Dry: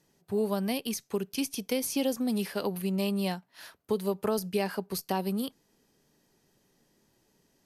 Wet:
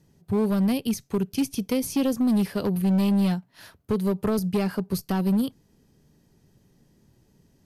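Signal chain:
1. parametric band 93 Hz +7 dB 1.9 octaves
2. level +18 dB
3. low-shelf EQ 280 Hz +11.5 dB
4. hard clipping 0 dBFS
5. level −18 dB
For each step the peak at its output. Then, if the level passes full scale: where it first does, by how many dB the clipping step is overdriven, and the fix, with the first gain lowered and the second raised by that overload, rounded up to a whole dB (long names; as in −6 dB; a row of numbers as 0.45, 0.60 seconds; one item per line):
−15.5, +2.5, +7.5, 0.0, −18.0 dBFS
step 2, 7.5 dB
step 2 +10 dB, step 5 −10 dB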